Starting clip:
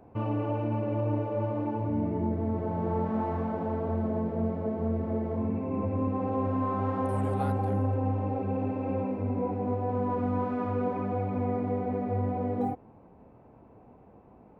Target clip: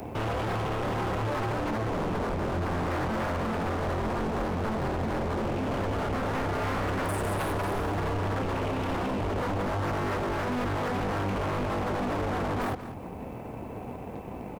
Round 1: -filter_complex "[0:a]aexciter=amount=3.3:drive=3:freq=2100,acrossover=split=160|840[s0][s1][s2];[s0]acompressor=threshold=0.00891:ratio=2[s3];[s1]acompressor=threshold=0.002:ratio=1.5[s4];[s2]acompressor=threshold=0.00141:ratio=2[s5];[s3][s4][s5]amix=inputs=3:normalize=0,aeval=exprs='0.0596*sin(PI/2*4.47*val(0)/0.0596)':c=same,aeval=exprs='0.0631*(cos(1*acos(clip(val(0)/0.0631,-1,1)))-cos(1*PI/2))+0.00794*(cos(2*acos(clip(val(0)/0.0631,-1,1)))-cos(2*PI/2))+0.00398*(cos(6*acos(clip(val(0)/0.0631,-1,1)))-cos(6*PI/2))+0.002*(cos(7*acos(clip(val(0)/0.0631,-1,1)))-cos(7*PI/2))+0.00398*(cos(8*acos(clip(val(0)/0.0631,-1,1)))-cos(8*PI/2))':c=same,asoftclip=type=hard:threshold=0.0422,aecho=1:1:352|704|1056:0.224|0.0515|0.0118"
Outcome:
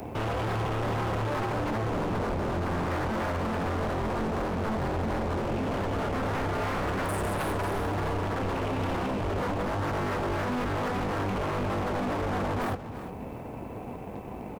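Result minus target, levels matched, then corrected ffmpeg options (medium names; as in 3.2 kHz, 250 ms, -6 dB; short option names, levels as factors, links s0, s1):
echo 159 ms late
-filter_complex "[0:a]aexciter=amount=3.3:drive=3:freq=2100,acrossover=split=160|840[s0][s1][s2];[s0]acompressor=threshold=0.00891:ratio=2[s3];[s1]acompressor=threshold=0.002:ratio=1.5[s4];[s2]acompressor=threshold=0.00141:ratio=2[s5];[s3][s4][s5]amix=inputs=3:normalize=0,aeval=exprs='0.0596*sin(PI/2*4.47*val(0)/0.0596)':c=same,aeval=exprs='0.0631*(cos(1*acos(clip(val(0)/0.0631,-1,1)))-cos(1*PI/2))+0.00794*(cos(2*acos(clip(val(0)/0.0631,-1,1)))-cos(2*PI/2))+0.00398*(cos(6*acos(clip(val(0)/0.0631,-1,1)))-cos(6*PI/2))+0.002*(cos(7*acos(clip(val(0)/0.0631,-1,1)))-cos(7*PI/2))+0.00398*(cos(8*acos(clip(val(0)/0.0631,-1,1)))-cos(8*PI/2))':c=same,asoftclip=type=hard:threshold=0.0422,aecho=1:1:193|386|579:0.224|0.0515|0.0118"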